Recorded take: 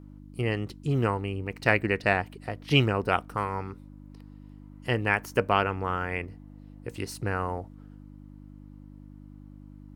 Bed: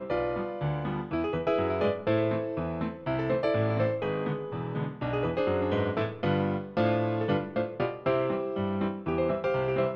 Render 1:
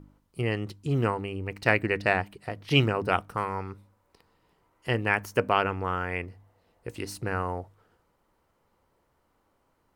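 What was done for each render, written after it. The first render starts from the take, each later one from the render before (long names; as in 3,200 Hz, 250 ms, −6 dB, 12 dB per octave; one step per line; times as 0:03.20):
hum removal 50 Hz, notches 6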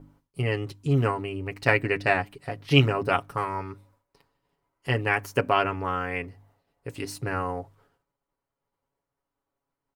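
downward expander −59 dBFS
comb filter 7.2 ms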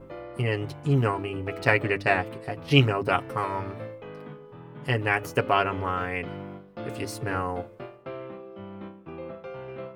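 mix in bed −11 dB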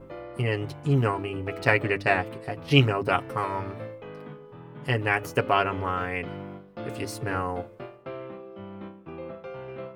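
no processing that can be heard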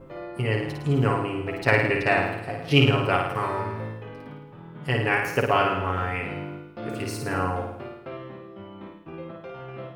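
flutter between parallel walls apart 9.3 metres, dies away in 0.81 s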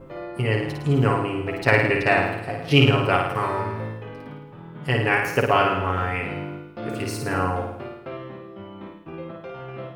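level +2.5 dB
brickwall limiter −3 dBFS, peak gain reduction 1 dB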